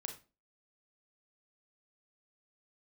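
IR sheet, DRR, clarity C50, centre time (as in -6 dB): 3.5 dB, 9.5 dB, 16 ms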